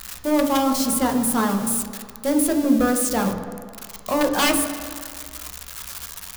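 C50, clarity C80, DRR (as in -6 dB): 7.5 dB, 9.0 dB, 3.0 dB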